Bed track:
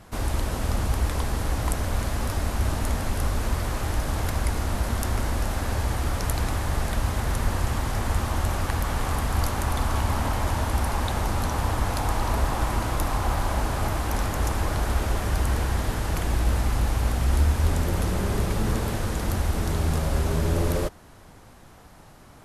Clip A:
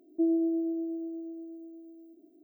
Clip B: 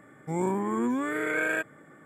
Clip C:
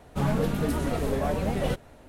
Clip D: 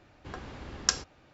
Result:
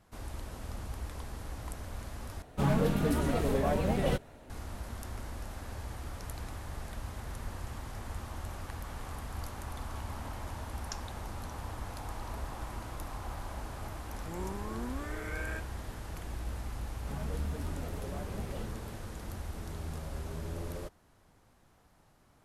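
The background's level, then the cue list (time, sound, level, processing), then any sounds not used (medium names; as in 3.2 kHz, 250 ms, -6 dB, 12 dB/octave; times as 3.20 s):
bed track -15.5 dB
2.42 s: replace with C -2 dB
10.03 s: add D -17.5 dB
13.98 s: add B -13 dB
16.91 s: add C -16.5 dB
not used: A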